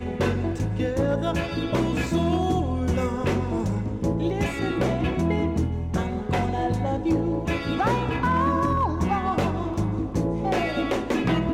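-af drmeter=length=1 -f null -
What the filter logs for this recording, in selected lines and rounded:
Channel 1: DR: 4.8
Overall DR: 4.8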